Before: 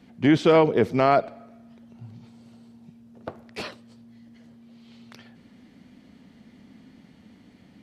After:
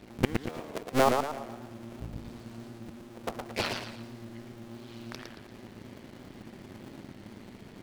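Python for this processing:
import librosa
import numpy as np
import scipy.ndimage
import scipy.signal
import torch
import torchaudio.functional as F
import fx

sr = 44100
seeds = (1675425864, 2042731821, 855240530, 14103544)

y = fx.cycle_switch(x, sr, every=2, mode='muted')
y = fx.gate_flip(y, sr, shuts_db=-15.0, range_db=-29)
y = fx.echo_warbled(y, sr, ms=115, feedback_pct=41, rate_hz=2.8, cents=164, wet_db=-5.0)
y = y * 10.0 ** (5.5 / 20.0)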